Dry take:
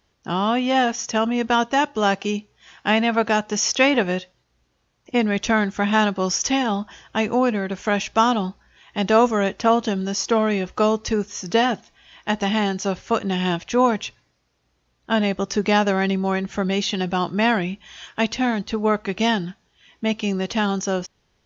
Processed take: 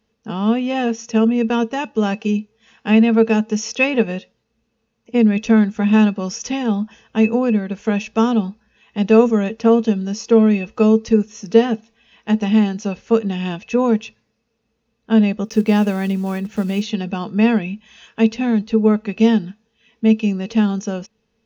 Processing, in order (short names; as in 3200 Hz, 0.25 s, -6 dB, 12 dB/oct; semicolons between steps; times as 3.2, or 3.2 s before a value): 15.45–16.83 block floating point 5-bit; small resonant body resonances 220/450/2600 Hz, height 17 dB, ringing for 0.1 s; gain -6 dB